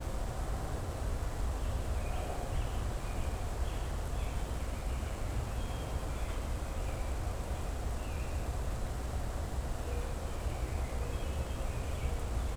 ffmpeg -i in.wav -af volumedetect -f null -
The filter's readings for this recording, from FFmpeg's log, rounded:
mean_volume: -35.1 dB
max_volume: -22.0 dB